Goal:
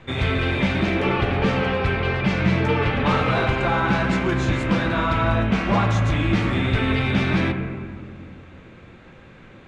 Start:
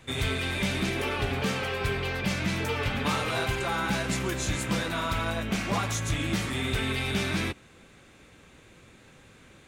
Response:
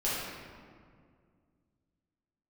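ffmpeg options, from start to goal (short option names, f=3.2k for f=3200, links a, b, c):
-filter_complex "[0:a]lowpass=3.2k,asplit=2[a][b];[1:a]atrim=start_sample=2205,lowpass=2.3k[c];[b][c]afir=irnorm=-1:irlink=0,volume=-11dB[d];[a][d]amix=inputs=2:normalize=0,volume=5.5dB"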